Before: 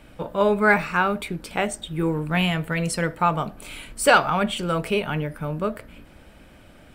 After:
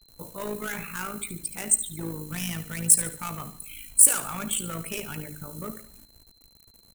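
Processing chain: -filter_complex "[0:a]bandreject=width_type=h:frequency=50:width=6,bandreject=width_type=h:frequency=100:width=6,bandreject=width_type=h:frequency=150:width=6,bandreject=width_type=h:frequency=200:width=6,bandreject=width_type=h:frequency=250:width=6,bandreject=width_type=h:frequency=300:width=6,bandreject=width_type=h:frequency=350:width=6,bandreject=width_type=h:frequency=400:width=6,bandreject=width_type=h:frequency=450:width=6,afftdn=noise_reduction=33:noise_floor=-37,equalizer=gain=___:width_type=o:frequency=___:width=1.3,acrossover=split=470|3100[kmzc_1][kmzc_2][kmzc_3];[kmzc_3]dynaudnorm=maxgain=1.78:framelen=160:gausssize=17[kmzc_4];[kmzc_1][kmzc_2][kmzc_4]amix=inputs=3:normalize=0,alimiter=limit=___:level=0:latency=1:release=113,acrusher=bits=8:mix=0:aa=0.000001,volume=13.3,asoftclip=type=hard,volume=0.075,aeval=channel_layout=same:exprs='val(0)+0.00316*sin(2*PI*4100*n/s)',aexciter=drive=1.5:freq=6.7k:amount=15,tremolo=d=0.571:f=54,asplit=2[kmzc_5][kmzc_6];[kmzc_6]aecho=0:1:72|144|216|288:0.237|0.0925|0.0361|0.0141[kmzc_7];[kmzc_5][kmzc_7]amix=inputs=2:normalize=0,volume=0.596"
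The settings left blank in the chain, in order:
-8.5, 670, 0.237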